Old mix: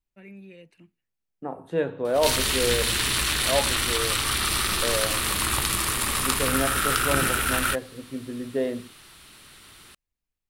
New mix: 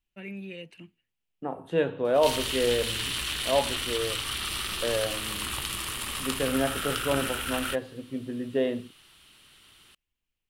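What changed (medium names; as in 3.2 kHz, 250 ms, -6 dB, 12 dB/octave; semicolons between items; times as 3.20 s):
first voice +5.5 dB; background -9.5 dB; master: add peaking EQ 3 kHz +8.5 dB 0.42 oct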